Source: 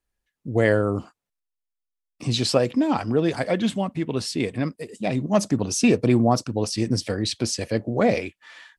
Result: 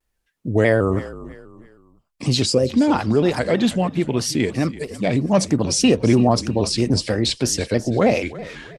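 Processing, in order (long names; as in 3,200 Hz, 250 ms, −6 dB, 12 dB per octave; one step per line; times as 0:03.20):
gain on a spectral selection 0:02.45–0:02.69, 560–4,800 Hz −13 dB
in parallel at 0 dB: brickwall limiter −17.5 dBFS, peak gain reduction 11.5 dB
on the sum: echo with shifted repeats 332 ms, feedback 37%, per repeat −40 Hz, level −17 dB
pitch modulation by a square or saw wave square 3.1 Hz, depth 100 cents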